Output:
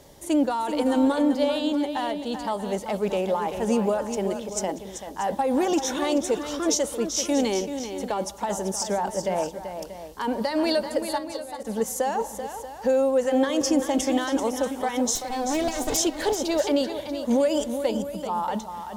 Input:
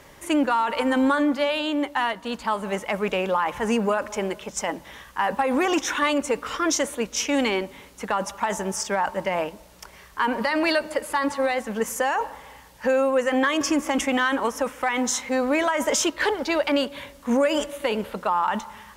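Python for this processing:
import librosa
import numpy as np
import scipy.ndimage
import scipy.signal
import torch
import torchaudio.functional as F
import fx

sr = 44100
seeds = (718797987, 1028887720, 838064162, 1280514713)

p1 = fx.lower_of_two(x, sr, delay_ms=2.7, at=(15.15, 15.97))
p2 = fx.band_shelf(p1, sr, hz=1700.0, db=-11.0, octaves=1.7)
p3 = fx.level_steps(p2, sr, step_db=20, at=(11.18, 11.65))
p4 = fx.spec_box(p3, sr, start_s=17.91, length_s=0.38, low_hz=280.0, high_hz=11000.0, gain_db=-11)
y = p4 + fx.echo_multitap(p4, sr, ms=(386, 635), db=(-9.0, -13.5), dry=0)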